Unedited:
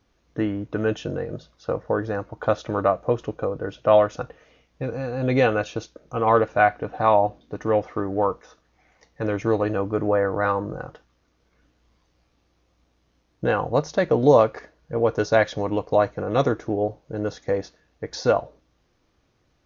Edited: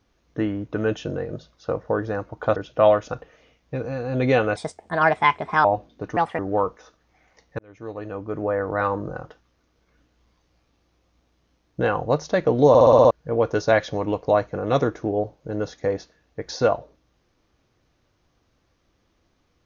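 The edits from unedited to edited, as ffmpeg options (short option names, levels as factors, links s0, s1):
-filter_complex "[0:a]asplit=14[s0][s1][s2][s3][s4][s5][s6][s7][s8][s9][s10][s11][s12][s13];[s0]atrim=end=2.562[s14];[s1]atrim=start=3.638:end=5.644[s15];[s2]atrim=start=5.64:end=7.16,asetpts=PTS-STARTPTS,asetrate=61740,aresample=44100[s16];[s3]atrim=start=7.156:end=7.684[s17];[s4]atrim=start=7.68:end=8.03,asetpts=PTS-STARTPTS,asetrate=69678,aresample=44100[s18];[s5]atrim=start=8.026:end=9.23,asetpts=PTS-STARTPTS,afade=t=out:st=1.2:d=0.004:c=hsin[s19];[s6]atrim=start=9.23:end=14.392,asetpts=PTS-STARTPTS,afade=t=in:d=1.34[s20];[s7]atrim=start=14.328:end=14.392[s21];[s8]atrim=start=14.328:end=14.392[s22];[s9]atrim=start=14.328:end=14.392[s23];[s10]atrim=start=14.328:end=14.392[s24];[s11]atrim=start=14.328:end=14.392[s25];[s12]atrim=start=14.328:end=14.392[s26];[s13]atrim=start=14.748[s27];[s14][s15]acrossfade=d=0.004:c1=hsin:c2=hsin[s28];[s28][s16]acrossfade=d=0.004:c1=hsin:c2=hsin[s29];[s29][s17]acrossfade=d=0.004:c1=hsin:c2=hsin[s30];[s30][s18]acrossfade=d=0.004:c1=hsin:c2=hsin[s31];[s19][s20]concat=n=2:v=0:a=1[s32];[s31][s32]acrossfade=d=0.004:c1=hsin:c2=hsin[s33];[s33][s21]acrossfade=d=0.004:c1=hsin:c2=hsin[s34];[s34][s22]acrossfade=d=0.004:c1=hsin:c2=hsin[s35];[s35][s23]acrossfade=d=0.004:c1=hsin:c2=hsin[s36];[s36][s24]acrossfade=d=0.004:c1=hsin:c2=hsin[s37];[s37][s25]acrossfade=d=0.004:c1=hsin:c2=hsin[s38];[s38][s26]acrossfade=d=0.004:c1=hsin:c2=hsin[s39];[s39][s27]acrossfade=d=0.004:c1=hsin:c2=hsin"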